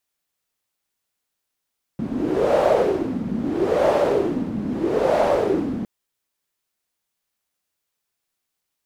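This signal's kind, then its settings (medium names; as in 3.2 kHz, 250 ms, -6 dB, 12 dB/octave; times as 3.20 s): wind-like swept noise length 3.86 s, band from 220 Hz, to 600 Hz, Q 4.5, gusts 3, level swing 9.5 dB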